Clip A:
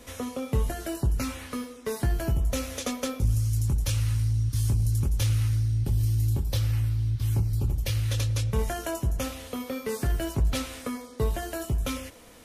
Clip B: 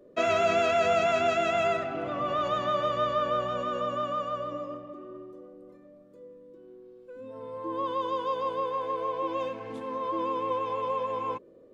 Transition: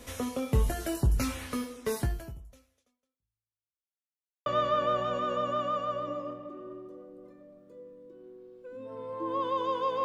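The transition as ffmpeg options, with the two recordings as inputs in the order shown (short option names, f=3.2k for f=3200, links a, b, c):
-filter_complex "[0:a]apad=whole_dur=10.04,atrim=end=10.04,asplit=2[a][b];[a]atrim=end=3.94,asetpts=PTS-STARTPTS,afade=t=out:st=1.98:d=1.96:c=exp[c];[b]atrim=start=3.94:end=4.46,asetpts=PTS-STARTPTS,volume=0[d];[1:a]atrim=start=2.9:end=8.48,asetpts=PTS-STARTPTS,afade=t=in:d=0.004:c=hsin[e];[c][d][e]concat=n=3:v=0:a=1"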